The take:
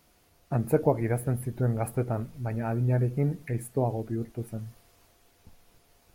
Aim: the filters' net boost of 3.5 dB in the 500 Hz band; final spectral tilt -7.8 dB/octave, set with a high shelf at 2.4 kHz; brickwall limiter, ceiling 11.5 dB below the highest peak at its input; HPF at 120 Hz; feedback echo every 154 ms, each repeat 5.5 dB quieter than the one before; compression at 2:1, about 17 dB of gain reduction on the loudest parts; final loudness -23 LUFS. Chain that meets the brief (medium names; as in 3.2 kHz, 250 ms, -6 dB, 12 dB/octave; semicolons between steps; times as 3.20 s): high-pass 120 Hz; peaking EQ 500 Hz +4.5 dB; treble shelf 2.4 kHz -5.5 dB; compression 2:1, threshold -47 dBFS; peak limiter -35 dBFS; feedback delay 154 ms, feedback 53%, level -5.5 dB; trim +22 dB